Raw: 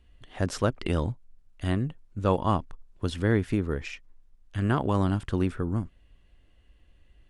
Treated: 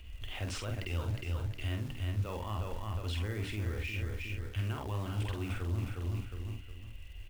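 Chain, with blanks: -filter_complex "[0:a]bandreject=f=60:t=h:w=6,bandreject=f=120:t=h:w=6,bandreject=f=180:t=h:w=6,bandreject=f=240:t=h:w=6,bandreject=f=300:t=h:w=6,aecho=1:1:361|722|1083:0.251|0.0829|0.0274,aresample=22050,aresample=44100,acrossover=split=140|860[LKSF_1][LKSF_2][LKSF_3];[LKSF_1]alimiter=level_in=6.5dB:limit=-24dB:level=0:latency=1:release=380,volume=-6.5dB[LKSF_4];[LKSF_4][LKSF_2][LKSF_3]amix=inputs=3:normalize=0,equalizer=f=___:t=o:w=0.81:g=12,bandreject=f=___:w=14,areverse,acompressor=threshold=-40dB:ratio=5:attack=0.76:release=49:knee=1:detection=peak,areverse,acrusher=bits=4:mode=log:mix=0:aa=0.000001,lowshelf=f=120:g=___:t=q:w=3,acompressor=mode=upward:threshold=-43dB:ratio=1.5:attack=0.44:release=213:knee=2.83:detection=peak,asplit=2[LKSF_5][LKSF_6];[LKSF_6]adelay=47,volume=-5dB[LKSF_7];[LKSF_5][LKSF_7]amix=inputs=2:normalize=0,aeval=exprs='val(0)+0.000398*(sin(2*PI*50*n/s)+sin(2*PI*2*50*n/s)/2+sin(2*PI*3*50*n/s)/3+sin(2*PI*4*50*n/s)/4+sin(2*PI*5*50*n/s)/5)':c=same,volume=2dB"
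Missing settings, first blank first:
2600, 1700, 6.5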